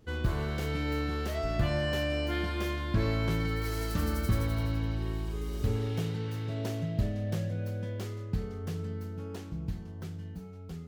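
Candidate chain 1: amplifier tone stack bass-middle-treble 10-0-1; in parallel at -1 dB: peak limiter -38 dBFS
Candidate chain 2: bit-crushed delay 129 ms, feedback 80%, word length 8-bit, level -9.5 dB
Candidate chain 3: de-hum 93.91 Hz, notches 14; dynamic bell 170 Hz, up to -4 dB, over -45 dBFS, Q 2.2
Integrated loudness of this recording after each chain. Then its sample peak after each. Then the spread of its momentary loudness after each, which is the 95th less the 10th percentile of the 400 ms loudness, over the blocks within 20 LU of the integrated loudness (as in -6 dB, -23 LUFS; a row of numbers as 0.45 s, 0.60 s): -40.5 LUFS, -32.5 LUFS, -33.5 LUFS; -24.5 dBFS, -16.5 dBFS, -17.5 dBFS; 8 LU, 8 LU, 11 LU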